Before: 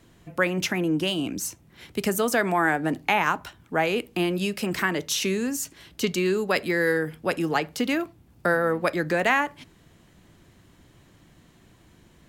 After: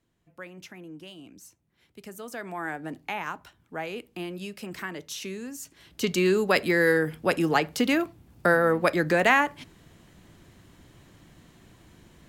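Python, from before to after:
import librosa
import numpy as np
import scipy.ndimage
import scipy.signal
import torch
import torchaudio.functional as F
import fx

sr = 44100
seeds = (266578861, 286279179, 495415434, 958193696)

y = fx.gain(x, sr, db=fx.line((2.0, -19.0), (2.7, -10.5), (5.56, -10.5), (6.22, 1.5)))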